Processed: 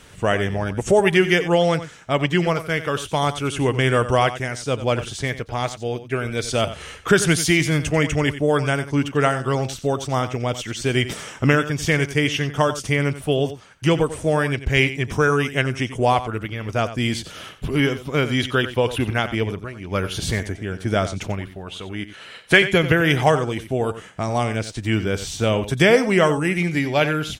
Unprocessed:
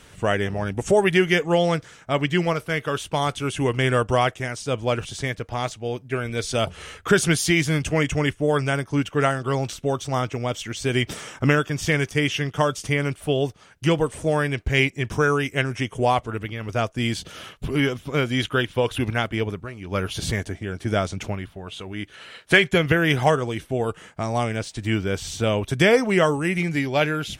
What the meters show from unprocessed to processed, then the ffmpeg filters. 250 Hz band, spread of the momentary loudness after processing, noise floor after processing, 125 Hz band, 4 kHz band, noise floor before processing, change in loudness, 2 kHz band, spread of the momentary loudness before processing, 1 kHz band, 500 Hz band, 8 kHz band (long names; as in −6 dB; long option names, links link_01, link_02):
+2.0 dB, 10 LU, −42 dBFS, +2.0 dB, +2.0 dB, −50 dBFS, +2.0 dB, +2.0 dB, 10 LU, +2.0 dB, +2.0 dB, +2.0 dB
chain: -af "aecho=1:1:91:0.224,volume=2dB"